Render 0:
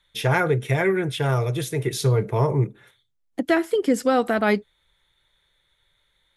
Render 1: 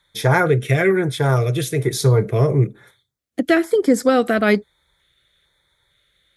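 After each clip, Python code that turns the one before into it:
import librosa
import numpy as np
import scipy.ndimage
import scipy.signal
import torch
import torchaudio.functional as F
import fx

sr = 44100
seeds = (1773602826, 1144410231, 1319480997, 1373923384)

y = scipy.signal.sosfilt(scipy.signal.butter(2, 45.0, 'highpass', fs=sr, output='sos'), x)
y = fx.filter_lfo_notch(y, sr, shape='square', hz=1.1, low_hz=910.0, high_hz=2800.0, q=2.1)
y = y * librosa.db_to_amplitude(5.0)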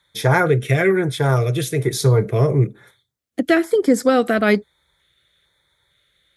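y = scipy.signal.sosfilt(scipy.signal.butter(2, 48.0, 'highpass', fs=sr, output='sos'), x)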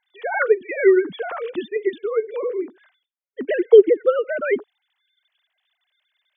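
y = fx.sine_speech(x, sr)
y = y * librosa.db_to_amplitude(-2.0)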